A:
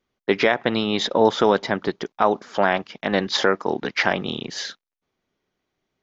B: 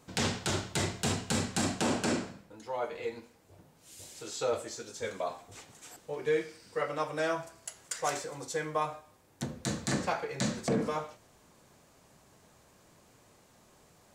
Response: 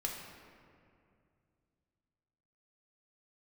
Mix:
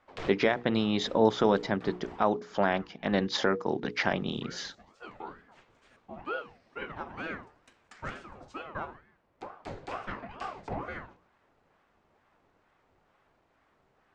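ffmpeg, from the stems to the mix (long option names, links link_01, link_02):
-filter_complex "[0:a]lowshelf=frequency=310:gain=9,volume=-9dB,asplit=2[link_01][link_02];[1:a]lowpass=2400,bandreject=frequency=59.04:width_type=h:width=4,bandreject=frequency=118.08:width_type=h:width=4,bandreject=frequency=177.12:width_type=h:width=4,bandreject=frequency=236.16:width_type=h:width=4,bandreject=frequency=295.2:width_type=h:width=4,bandreject=frequency=354.24:width_type=h:width=4,bandreject=frequency=413.28:width_type=h:width=4,bandreject=frequency=472.32:width_type=h:width=4,bandreject=frequency=531.36:width_type=h:width=4,bandreject=frequency=590.4:width_type=h:width=4,bandreject=frequency=649.44:width_type=h:width=4,bandreject=frequency=708.48:width_type=h:width=4,bandreject=frequency=767.52:width_type=h:width=4,aeval=exprs='val(0)*sin(2*PI*600*n/s+600*0.65/2.2*sin(2*PI*2.2*n/s))':channel_layout=same,volume=-3dB[link_03];[link_02]apad=whole_len=623808[link_04];[link_03][link_04]sidechaincompress=threshold=-31dB:ratio=8:attack=5.5:release=1150[link_05];[link_01][link_05]amix=inputs=2:normalize=0,bandreject=frequency=60:width_type=h:width=6,bandreject=frequency=120:width_type=h:width=6,bandreject=frequency=180:width_type=h:width=6,bandreject=frequency=240:width_type=h:width=6,bandreject=frequency=300:width_type=h:width=6,bandreject=frequency=360:width_type=h:width=6,bandreject=frequency=420:width_type=h:width=6,bandreject=frequency=480:width_type=h:width=6"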